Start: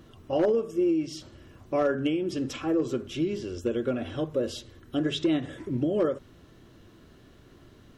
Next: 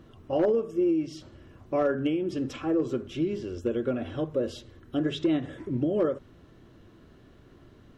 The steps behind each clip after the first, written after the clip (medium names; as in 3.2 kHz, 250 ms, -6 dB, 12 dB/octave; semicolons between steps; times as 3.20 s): treble shelf 3.3 kHz -8.5 dB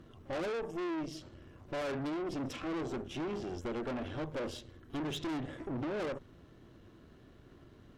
valve stage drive 36 dB, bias 0.8; reverse echo 46 ms -24 dB; trim +1.5 dB